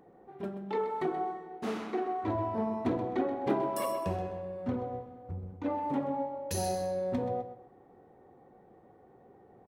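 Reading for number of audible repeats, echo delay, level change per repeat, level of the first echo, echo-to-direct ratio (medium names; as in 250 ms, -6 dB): 2, 128 ms, -10.5 dB, -11.5 dB, -11.0 dB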